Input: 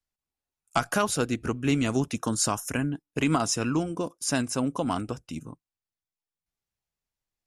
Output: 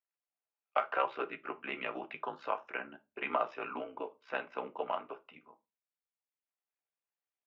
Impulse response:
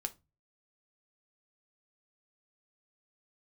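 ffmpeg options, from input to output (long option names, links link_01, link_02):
-filter_complex "[0:a]tremolo=f=64:d=0.857[link_01];[1:a]atrim=start_sample=2205,afade=type=out:start_time=0.31:duration=0.01,atrim=end_sample=14112[link_02];[link_01][link_02]afir=irnorm=-1:irlink=0,highpass=frequency=520:width_type=q:width=0.5412,highpass=frequency=520:width_type=q:width=1.307,lowpass=frequency=2900:width_type=q:width=0.5176,lowpass=frequency=2900:width_type=q:width=0.7071,lowpass=frequency=2900:width_type=q:width=1.932,afreqshift=-71"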